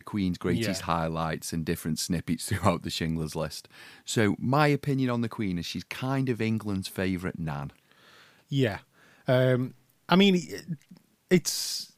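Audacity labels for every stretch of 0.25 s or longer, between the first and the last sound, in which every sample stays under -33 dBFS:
3.650000	4.090000	silence
7.670000	8.520000	silence
8.770000	9.280000	silence
9.680000	10.090000	silence
10.740000	11.310000	silence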